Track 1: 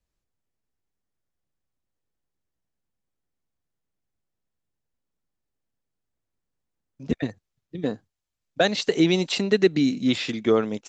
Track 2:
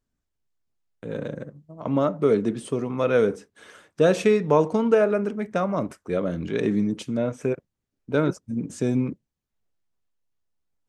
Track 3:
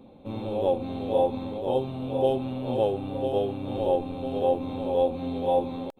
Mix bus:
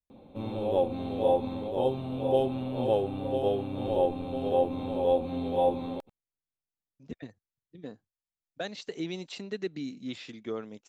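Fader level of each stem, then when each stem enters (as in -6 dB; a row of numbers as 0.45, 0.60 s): -15.5 dB, off, -1.5 dB; 0.00 s, off, 0.10 s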